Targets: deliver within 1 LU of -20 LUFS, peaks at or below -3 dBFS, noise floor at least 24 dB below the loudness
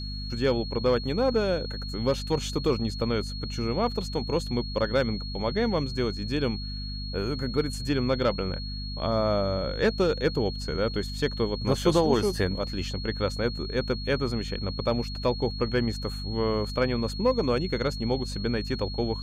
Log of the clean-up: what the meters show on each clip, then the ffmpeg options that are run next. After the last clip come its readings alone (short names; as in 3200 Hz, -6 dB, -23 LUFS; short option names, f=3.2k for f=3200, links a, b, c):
hum 50 Hz; harmonics up to 250 Hz; hum level -32 dBFS; steady tone 4300 Hz; tone level -38 dBFS; loudness -28.0 LUFS; peak -9.0 dBFS; loudness target -20.0 LUFS
-> -af "bandreject=f=50:t=h:w=4,bandreject=f=100:t=h:w=4,bandreject=f=150:t=h:w=4,bandreject=f=200:t=h:w=4,bandreject=f=250:t=h:w=4"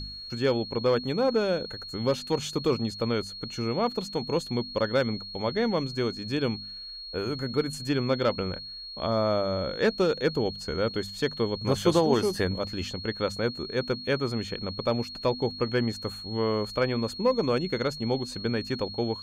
hum none; steady tone 4300 Hz; tone level -38 dBFS
-> -af "bandreject=f=4.3k:w=30"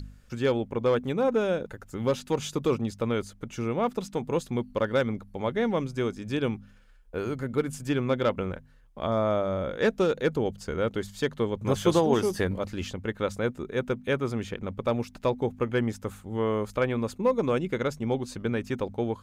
steady tone none; loudness -28.5 LUFS; peak -8.5 dBFS; loudness target -20.0 LUFS
-> -af "volume=8.5dB,alimiter=limit=-3dB:level=0:latency=1"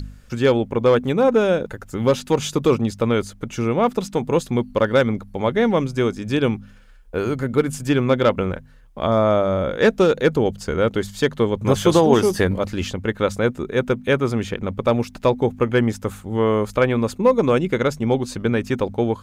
loudness -20.0 LUFS; peak -3.0 dBFS; noise floor -45 dBFS